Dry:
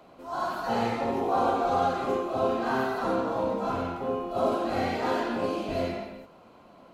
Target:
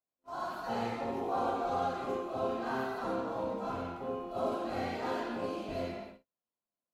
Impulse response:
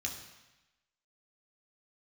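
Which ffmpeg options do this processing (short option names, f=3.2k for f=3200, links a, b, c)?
-af "agate=range=-39dB:threshold=-40dB:ratio=16:detection=peak,volume=-7.5dB"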